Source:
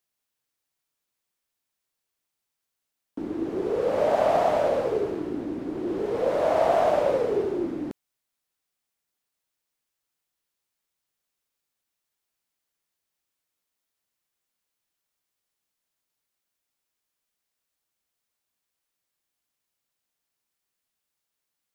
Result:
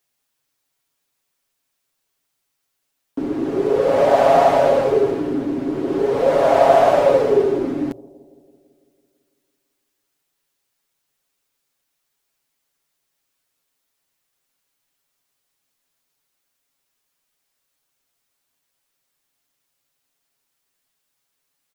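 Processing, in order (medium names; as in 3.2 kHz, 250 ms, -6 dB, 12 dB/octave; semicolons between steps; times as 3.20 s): hum notches 60/120 Hz; comb 7.3 ms; on a send: bucket-brigade echo 166 ms, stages 1024, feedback 64%, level -22.5 dB; on the sum: trim +7 dB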